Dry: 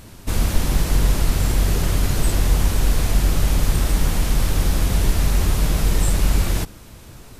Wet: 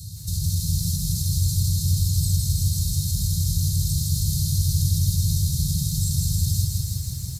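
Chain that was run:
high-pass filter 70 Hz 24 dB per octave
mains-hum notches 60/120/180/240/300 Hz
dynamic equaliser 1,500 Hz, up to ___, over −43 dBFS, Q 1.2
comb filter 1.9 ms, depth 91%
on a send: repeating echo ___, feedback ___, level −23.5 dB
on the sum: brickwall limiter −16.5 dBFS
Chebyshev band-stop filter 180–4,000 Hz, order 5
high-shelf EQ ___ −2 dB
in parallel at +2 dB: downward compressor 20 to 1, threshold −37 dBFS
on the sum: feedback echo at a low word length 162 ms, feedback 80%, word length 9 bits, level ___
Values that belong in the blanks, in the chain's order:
+3 dB, 93 ms, 23%, 2,900 Hz, −3.5 dB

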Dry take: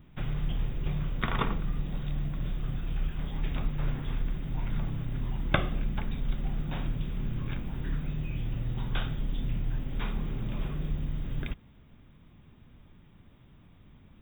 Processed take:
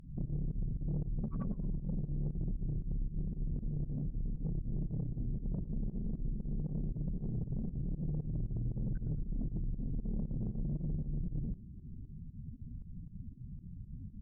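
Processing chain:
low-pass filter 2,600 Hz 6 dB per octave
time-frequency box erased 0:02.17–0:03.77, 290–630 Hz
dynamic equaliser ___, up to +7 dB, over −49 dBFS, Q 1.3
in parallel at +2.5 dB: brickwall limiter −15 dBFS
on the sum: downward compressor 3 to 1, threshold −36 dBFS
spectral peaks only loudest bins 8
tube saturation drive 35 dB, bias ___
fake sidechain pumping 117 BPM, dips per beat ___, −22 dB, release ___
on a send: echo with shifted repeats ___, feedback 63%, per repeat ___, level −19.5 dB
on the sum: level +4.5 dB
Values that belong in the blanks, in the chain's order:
200 Hz, 0.25, 2, 91 ms, 108 ms, −69 Hz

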